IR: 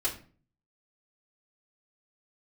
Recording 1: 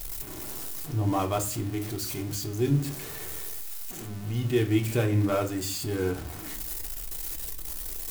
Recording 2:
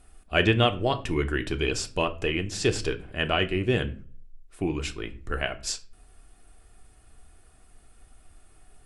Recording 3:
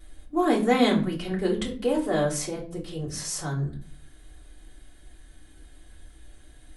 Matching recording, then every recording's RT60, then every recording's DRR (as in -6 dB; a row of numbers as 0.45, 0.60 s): 3; 0.40, 0.40, 0.40 s; 2.0, 6.5, -8.0 dB